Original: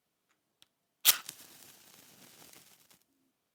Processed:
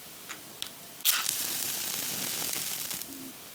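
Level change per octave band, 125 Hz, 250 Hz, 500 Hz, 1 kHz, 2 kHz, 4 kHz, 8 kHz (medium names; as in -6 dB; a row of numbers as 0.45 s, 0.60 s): no reading, +18.0 dB, +13.0 dB, +7.5 dB, +6.5 dB, +4.0 dB, +6.0 dB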